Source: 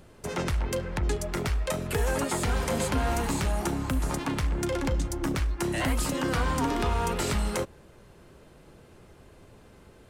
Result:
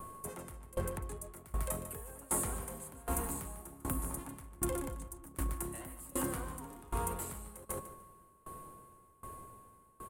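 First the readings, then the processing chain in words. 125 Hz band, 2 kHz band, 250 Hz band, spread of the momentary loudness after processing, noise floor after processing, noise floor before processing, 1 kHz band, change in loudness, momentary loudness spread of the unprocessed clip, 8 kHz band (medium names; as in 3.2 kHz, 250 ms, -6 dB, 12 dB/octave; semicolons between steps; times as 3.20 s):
-13.0 dB, -17.0 dB, -12.5 dB, 15 LU, -63 dBFS, -54 dBFS, -11.0 dB, -11.0 dB, 3 LU, -4.0 dB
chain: FFT filter 920 Hz 0 dB, 5.5 kHz -10 dB, 9.1 kHz +11 dB; reverse; compression 6:1, threshold -33 dBFS, peak gain reduction 11.5 dB; reverse; whistle 1.1 kHz -47 dBFS; treble shelf 8.5 kHz +5.5 dB; on a send: feedback delay 148 ms, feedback 32%, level -7 dB; on the sum: sawtooth tremolo in dB decaying 1.3 Hz, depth 23 dB; trim +2 dB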